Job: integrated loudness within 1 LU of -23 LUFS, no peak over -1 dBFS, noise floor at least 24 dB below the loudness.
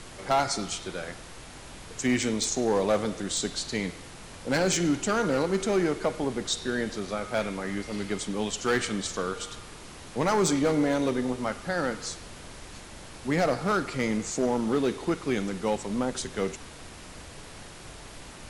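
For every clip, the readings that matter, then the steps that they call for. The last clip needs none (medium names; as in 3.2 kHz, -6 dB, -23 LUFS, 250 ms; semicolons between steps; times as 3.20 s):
clipped samples 0.9%; clipping level -18.0 dBFS; noise floor -45 dBFS; noise floor target -52 dBFS; loudness -28.0 LUFS; peak level -18.0 dBFS; loudness target -23.0 LUFS
-> clip repair -18 dBFS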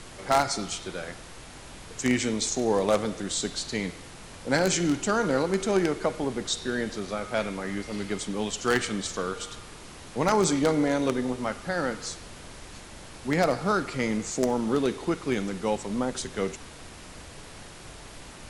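clipped samples 0.0%; noise floor -45 dBFS; noise floor target -52 dBFS
-> noise print and reduce 7 dB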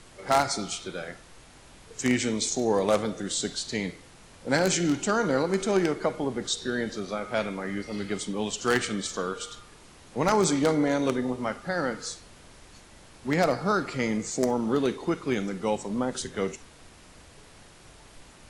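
noise floor -52 dBFS; loudness -27.5 LUFS; peak level -9.0 dBFS; loudness target -23.0 LUFS
-> trim +4.5 dB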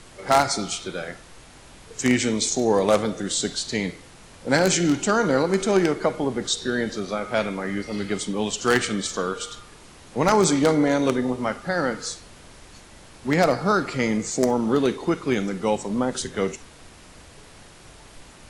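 loudness -23.0 LUFS; peak level -4.5 dBFS; noise floor -48 dBFS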